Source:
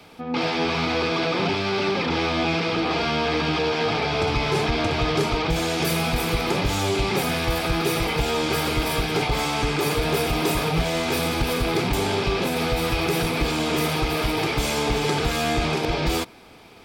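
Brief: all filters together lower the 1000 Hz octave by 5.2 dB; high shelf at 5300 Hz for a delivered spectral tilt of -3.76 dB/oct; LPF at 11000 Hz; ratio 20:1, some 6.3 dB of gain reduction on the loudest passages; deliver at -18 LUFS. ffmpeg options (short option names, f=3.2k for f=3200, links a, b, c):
-af "lowpass=11k,equalizer=f=1k:t=o:g=-7.5,highshelf=f=5.3k:g=7.5,acompressor=threshold=-24dB:ratio=20,volume=9.5dB"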